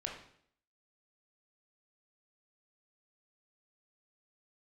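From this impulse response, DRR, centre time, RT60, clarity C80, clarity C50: −0.5 dB, 33 ms, 0.65 s, 8.5 dB, 5.0 dB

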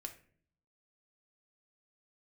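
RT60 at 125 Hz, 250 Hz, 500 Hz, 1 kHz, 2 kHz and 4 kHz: 0.95, 0.85, 0.60, 0.40, 0.45, 0.30 seconds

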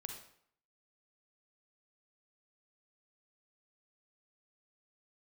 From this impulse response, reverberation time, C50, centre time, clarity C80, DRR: 0.65 s, 4.5 dB, 28 ms, 8.0 dB, 3.0 dB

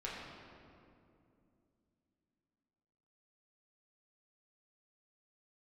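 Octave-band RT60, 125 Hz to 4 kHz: 3.5, 3.8, 2.9, 2.3, 1.8, 1.5 seconds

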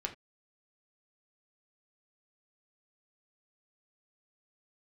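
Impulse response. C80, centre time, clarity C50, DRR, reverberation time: 19.5 dB, 11 ms, 13.5 dB, 2.5 dB, non-exponential decay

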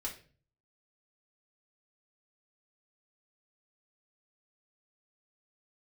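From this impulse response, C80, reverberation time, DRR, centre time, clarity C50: 15.5 dB, 0.40 s, −3.0 dB, 17 ms, 10.0 dB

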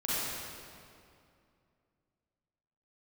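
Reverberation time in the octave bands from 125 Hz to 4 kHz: 2.9, 2.8, 2.5, 2.4, 2.1, 1.8 seconds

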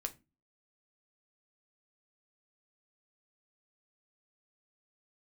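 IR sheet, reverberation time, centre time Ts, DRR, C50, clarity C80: 0.25 s, 6 ms, 6.0 dB, 19.0 dB, 26.0 dB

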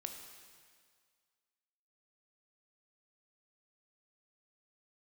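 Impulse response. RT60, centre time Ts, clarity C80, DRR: 1.9 s, 44 ms, 6.5 dB, 4.0 dB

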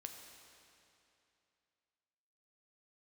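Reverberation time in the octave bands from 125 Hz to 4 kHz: 2.8, 2.8, 2.8, 2.8, 2.7, 2.5 seconds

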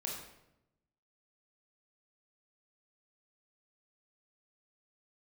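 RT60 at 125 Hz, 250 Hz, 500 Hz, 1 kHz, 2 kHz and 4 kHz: 1.3, 1.1, 0.95, 0.80, 0.70, 0.65 seconds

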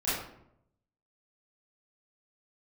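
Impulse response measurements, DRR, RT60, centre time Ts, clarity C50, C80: −13.0 dB, 0.75 s, 65 ms, 0.0 dB, 4.5 dB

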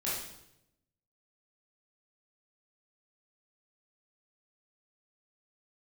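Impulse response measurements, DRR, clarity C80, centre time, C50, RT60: −8.5 dB, 4.5 dB, 62 ms, 0.5 dB, 0.80 s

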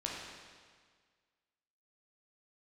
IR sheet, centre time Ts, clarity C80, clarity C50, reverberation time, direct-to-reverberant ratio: 93 ms, 1.5 dB, −0.5 dB, 1.7 s, −3.5 dB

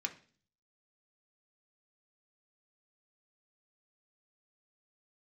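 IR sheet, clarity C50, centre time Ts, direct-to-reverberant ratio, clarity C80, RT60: 14.5 dB, 7 ms, 3.0 dB, 19.5 dB, 0.45 s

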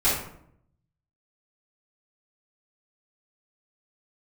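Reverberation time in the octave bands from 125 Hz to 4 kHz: 1.1, 0.90, 0.75, 0.65, 0.55, 0.40 seconds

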